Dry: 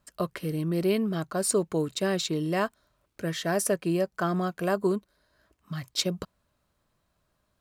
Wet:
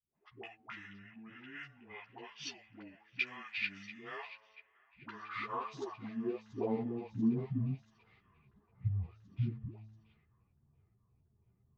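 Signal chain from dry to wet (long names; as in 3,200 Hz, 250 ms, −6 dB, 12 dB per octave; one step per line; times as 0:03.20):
low-pass filter 8,700 Hz
low-shelf EQ 310 Hz +7 dB
hum removal 168.6 Hz, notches 14
downward compressor 3 to 1, threshold −36 dBFS, peak gain reduction 14 dB
band-pass filter sweep 3,300 Hz → 200 Hz, 0:03.09–0:04.99
all-pass dispersion highs, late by 98 ms, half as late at 540 Hz
on a send: delay with a high-pass on its return 443 ms, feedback 67%, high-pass 2,900 Hz, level −14 dB
on the sum: low-pass that shuts in the quiet parts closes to 1,300 Hz, open at −49.5 dBFS
change of speed 0.646×
string-ensemble chorus
level +10.5 dB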